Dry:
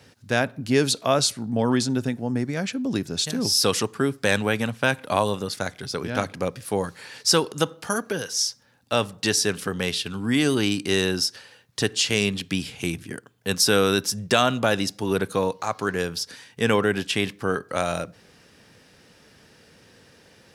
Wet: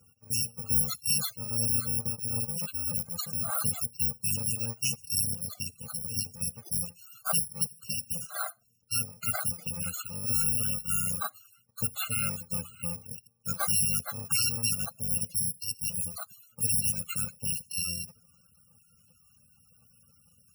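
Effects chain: FFT order left unsorted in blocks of 128 samples; loudest bins only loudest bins 64; gain -5.5 dB

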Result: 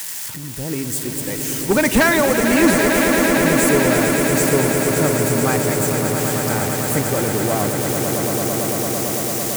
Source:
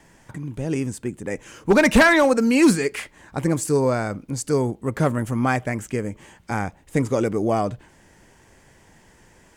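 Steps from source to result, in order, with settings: switching spikes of -18 dBFS; swelling echo 0.112 s, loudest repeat 8, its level -8.5 dB; gain -1 dB

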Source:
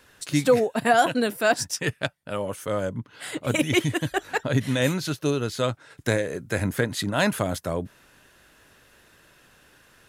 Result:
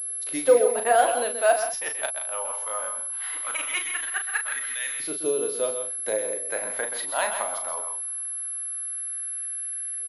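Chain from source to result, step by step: LFO high-pass saw up 0.2 Hz 400–1800 Hz; doubler 37 ms -7 dB; on a send: loudspeakers at several distances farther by 44 m -9 dB, 57 m -11 dB; 4.73–6.49 on the sum: dynamic EQ 1500 Hz, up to -6 dB, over -37 dBFS, Q 0.71; pulse-width modulation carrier 11000 Hz; gain -6 dB

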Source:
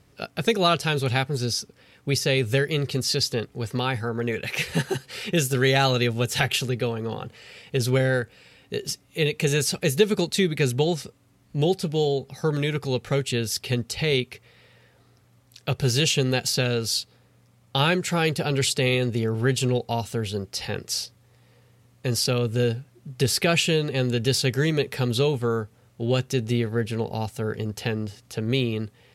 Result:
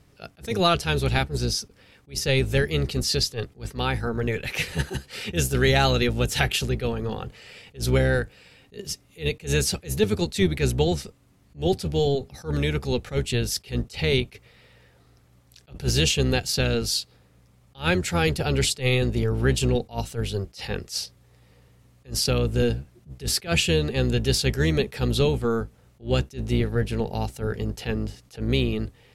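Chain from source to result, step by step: octaver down 1 oct, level -3 dB; attack slew limiter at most 250 dB/s

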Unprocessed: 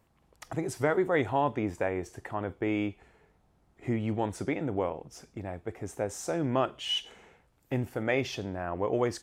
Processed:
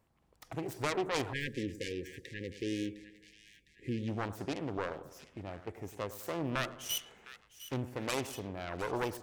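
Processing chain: self-modulated delay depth 0.65 ms; split-band echo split 1400 Hz, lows 0.102 s, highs 0.707 s, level -14 dB; spectral delete 1.33–4.08, 540–1600 Hz; gain -5.5 dB

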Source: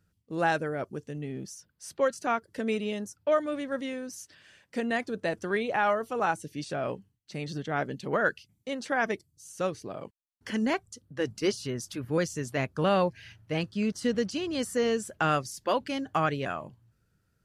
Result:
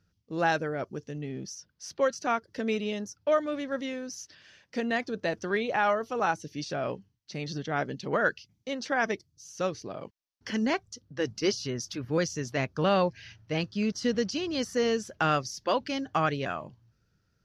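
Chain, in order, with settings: resonant high shelf 7000 Hz -7.5 dB, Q 3

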